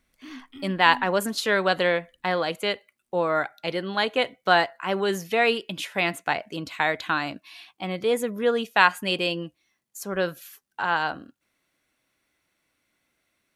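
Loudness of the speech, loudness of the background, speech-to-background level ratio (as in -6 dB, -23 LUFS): -25.0 LUFS, -44.0 LUFS, 19.0 dB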